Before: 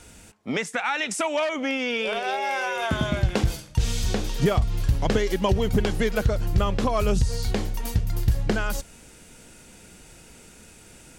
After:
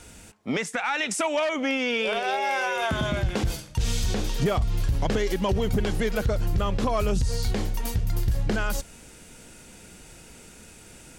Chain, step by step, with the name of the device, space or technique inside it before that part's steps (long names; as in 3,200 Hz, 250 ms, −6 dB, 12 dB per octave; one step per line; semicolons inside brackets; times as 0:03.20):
soft clipper into limiter (soft clipping −11.5 dBFS, distortion −22 dB; brickwall limiter −17.5 dBFS, peak gain reduction 4.5 dB)
level +1 dB